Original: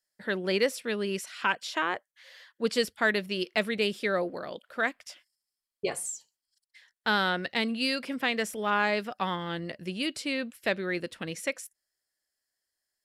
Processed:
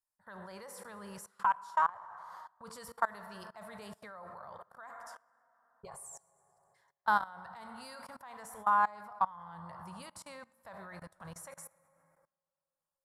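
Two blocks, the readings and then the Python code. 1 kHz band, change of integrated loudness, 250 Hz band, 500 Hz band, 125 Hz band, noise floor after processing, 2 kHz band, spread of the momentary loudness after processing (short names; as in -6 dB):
+0.5 dB, -5.0 dB, -19.0 dB, -18.0 dB, -13.5 dB, under -85 dBFS, -12.0 dB, 19 LU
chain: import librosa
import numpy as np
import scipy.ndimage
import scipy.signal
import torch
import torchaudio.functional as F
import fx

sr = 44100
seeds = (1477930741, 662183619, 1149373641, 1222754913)

y = fx.curve_eq(x, sr, hz=(120.0, 320.0, 990.0, 2600.0, 9400.0), db=(0, -24, 12, -18, 2))
y = fx.rev_plate(y, sr, seeds[0], rt60_s=2.3, hf_ratio=0.45, predelay_ms=0, drr_db=9.5)
y = fx.level_steps(y, sr, step_db=23)
y = fx.low_shelf(y, sr, hz=210.0, db=8.5)
y = y * librosa.db_to_amplitude(-3.0)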